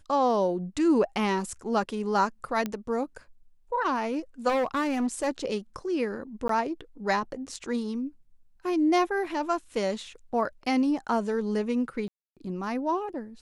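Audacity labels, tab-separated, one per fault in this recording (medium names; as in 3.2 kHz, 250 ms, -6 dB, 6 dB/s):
2.660000	2.660000	pop -17 dBFS
4.480000	5.280000	clipped -23 dBFS
6.480000	6.490000	dropout 13 ms
12.080000	12.370000	dropout 287 ms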